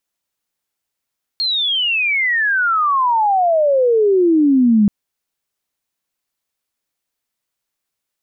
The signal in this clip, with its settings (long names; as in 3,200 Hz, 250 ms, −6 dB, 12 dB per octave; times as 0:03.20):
glide logarithmic 4,300 Hz → 200 Hz −15.5 dBFS → −8.5 dBFS 3.48 s